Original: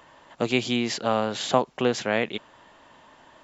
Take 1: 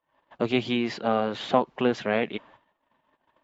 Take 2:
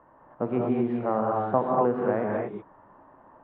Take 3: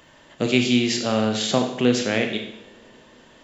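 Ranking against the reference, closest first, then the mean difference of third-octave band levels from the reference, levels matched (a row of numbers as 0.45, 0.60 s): 3, 1, 2; 4.5, 5.5, 9.0 dB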